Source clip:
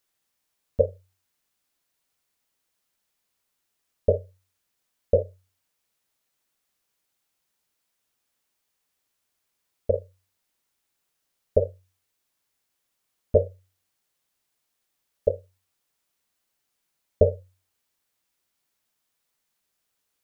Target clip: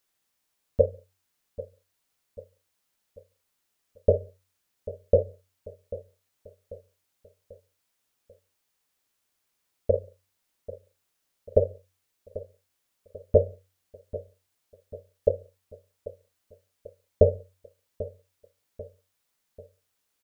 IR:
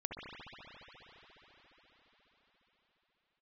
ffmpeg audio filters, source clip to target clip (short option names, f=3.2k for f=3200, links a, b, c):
-filter_complex "[0:a]aecho=1:1:791|1582|2373|3164:0.15|0.0703|0.0331|0.0155,asplit=2[a][b];[1:a]atrim=start_sample=2205,afade=t=out:st=0.25:d=0.01,atrim=end_sample=11466[c];[b][c]afir=irnorm=-1:irlink=0,volume=-24dB[d];[a][d]amix=inputs=2:normalize=0"